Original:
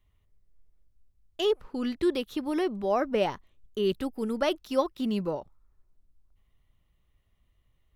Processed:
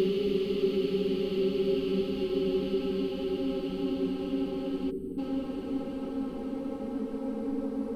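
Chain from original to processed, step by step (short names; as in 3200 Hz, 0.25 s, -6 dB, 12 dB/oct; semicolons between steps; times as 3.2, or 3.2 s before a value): Wiener smoothing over 25 samples; Paulstretch 34×, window 0.50 s, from 3.9; spectral gain 4.91–5.18, 480–7900 Hz -23 dB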